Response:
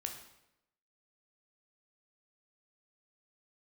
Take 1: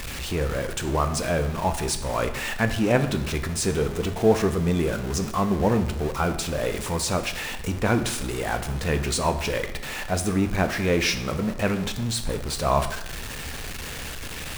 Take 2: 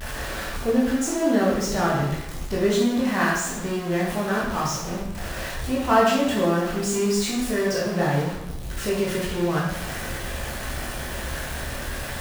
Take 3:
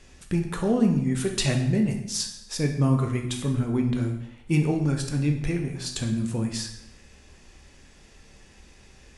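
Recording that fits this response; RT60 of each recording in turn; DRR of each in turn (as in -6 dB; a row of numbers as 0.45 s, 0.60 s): 3; 0.85 s, 0.85 s, 0.85 s; 7.5 dB, -6.0 dB, 2.5 dB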